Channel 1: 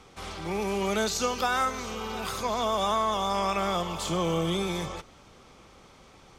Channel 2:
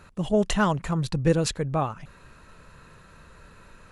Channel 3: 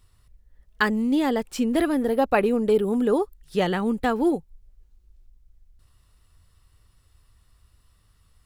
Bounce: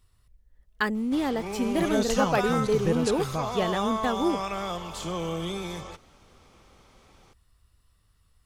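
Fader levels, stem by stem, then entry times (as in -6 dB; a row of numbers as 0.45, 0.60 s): -4.0, -5.5, -4.5 dB; 0.95, 1.60, 0.00 s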